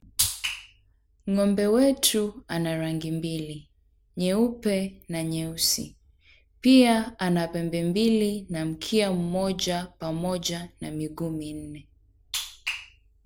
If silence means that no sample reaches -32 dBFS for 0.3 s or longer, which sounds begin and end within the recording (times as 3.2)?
1.28–3.56
4.17–5.86
6.64–11.75
12.34–12.79